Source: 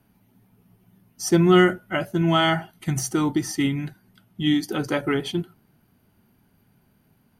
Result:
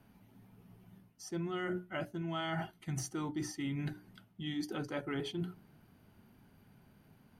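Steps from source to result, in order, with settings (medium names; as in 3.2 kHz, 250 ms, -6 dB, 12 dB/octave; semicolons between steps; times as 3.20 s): treble shelf 8.2 kHz -9 dB; hum notches 60/120/180/240/300/360/420 Hz; reverse; compression 10:1, threshold -35 dBFS, peak gain reduction 21.5 dB; reverse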